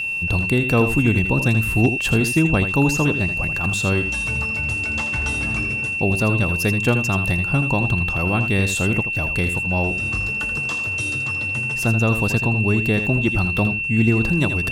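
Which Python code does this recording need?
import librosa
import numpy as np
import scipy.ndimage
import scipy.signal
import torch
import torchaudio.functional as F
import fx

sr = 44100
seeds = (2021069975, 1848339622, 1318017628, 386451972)

y = fx.fix_declip(x, sr, threshold_db=-6.0)
y = fx.notch(y, sr, hz=2700.0, q=30.0)
y = fx.fix_echo_inverse(y, sr, delay_ms=81, level_db=-9.5)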